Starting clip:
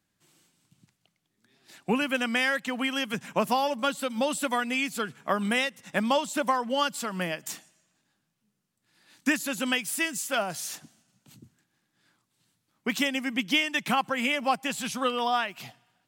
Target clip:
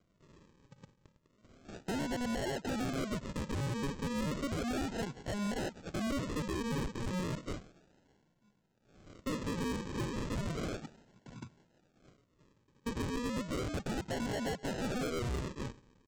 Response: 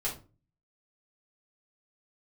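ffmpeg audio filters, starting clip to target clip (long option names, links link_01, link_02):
-af "alimiter=limit=-18dB:level=0:latency=1:release=236,acompressor=threshold=-31dB:ratio=5,aresample=16000,acrusher=samples=18:mix=1:aa=0.000001:lfo=1:lforange=10.8:lforate=0.33,aresample=44100,asoftclip=type=tanh:threshold=-37.5dB,volume=5.5dB"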